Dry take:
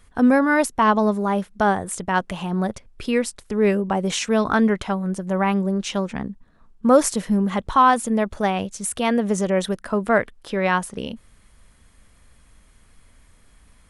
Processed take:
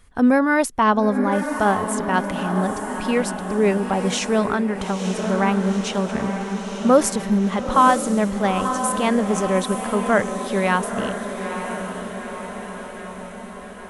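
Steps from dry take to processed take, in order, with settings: diffused feedback echo 0.919 s, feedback 62%, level -7.5 dB; 4.45–5.04 compressor 2.5:1, threshold -20 dBFS, peak gain reduction 5 dB

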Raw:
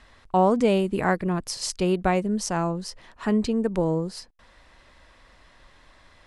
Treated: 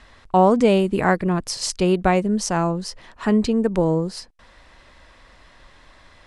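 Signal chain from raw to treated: LPF 11000 Hz; gain +4.5 dB

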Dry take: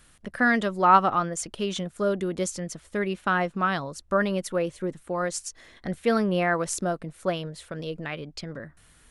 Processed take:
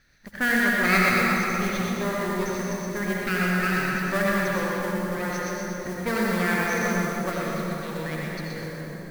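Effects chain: minimum comb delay 0.49 ms; rippled Chebyshev low-pass 6400 Hz, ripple 6 dB; split-band echo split 640 Hz, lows 0.679 s, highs 0.123 s, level -5 dB; modulation noise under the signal 16 dB; reverb RT60 3.2 s, pre-delay 63 ms, DRR -3 dB

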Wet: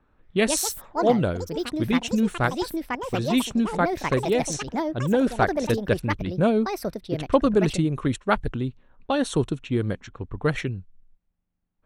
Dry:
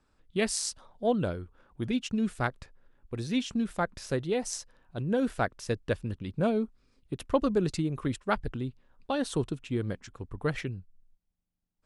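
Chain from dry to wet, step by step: Butterworth band-stop 4900 Hz, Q 6.9; low-pass opened by the level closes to 2100 Hz, open at -26 dBFS; echoes that change speed 0.226 s, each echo +6 st, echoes 2, each echo -6 dB; gain +6.5 dB

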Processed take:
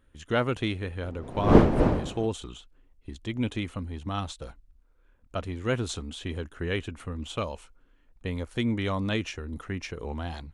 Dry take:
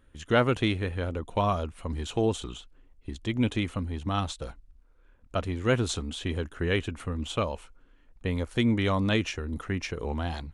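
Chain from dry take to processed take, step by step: 1.03–2.26 wind noise 380 Hz -24 dBFS; 7.36–8.3 dynamic EQ 6400 Hz, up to +5 dB, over -56 dBFS, Q 0.79; gain -3 dB

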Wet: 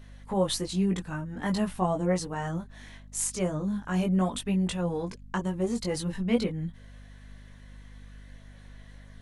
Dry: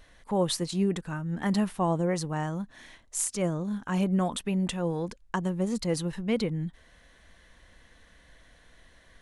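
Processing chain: chorus voices 4, 0.42 Hz, delay 19 ms, depth 2.7 ms; hum 50 Hz, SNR 18 dB; gain +3 dB

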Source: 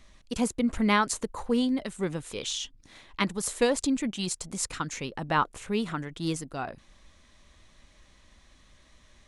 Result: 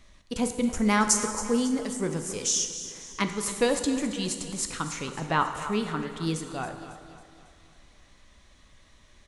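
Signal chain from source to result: 0.68–3.22 resonant high shelf 4700 Hz +6.5 dB, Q 3; feedback echo 0.274 s, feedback 50%, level -14 dB; plate-style reverb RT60 1.9 s, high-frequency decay 0.75×, DRR 6.5 dB

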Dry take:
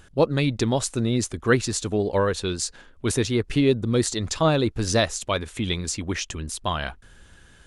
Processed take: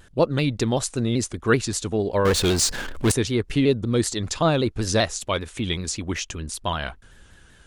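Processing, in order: 2.25–3.12 power-law curve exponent 0.5; shaped vibrato saw down 5.2 Hz, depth 100 cents

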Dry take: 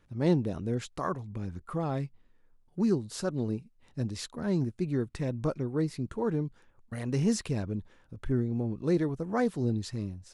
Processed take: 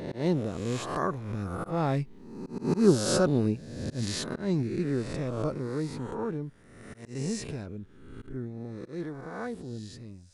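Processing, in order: spectral swells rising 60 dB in 1.07 s; Doppler pass-by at 2.77, 6 m/s, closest 6 m; auto swell 0.15 s; gain +6.5 dB

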